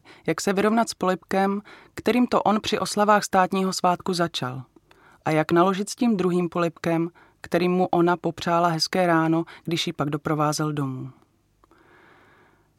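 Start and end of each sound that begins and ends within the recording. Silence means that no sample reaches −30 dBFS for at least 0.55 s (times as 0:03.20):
0:05.26–0:11.07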